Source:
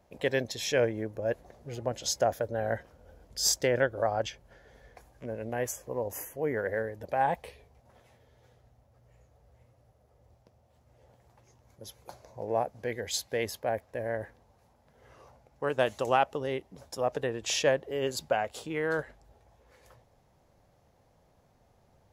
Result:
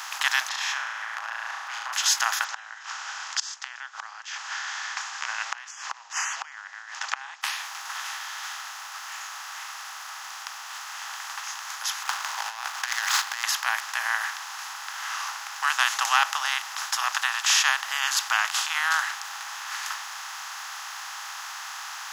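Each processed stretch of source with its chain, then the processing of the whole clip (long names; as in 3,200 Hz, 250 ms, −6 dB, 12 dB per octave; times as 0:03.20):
0:00.49–0:01.93: low-pass filter 1,300 Hz + flutter between parallel walls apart 6.1 metres, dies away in 0.53 s + downward compressor 10 to 1, threshold −38 dBFS
0:02.44–0:07.43: gate with flip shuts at −24 dBFS, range −40 dB + Chebyshev low-pass with heavy ripple 7,400 Hz, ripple 3 dB
0:12.03–0:13.44: running median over 15 samples + compressor whose output falls as the input rises −38 dBFS, ratio −0.5
0:15.94–0:16.48: parametric band 310 Hz +13.5 dB 1.6 octaves + one half of a high-frequency compander decoder only
whole clip: compressor on every frequency bin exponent 0.4; Butterworth high-pass 1,000 Hz 48 dB per octave; level +6.5 dB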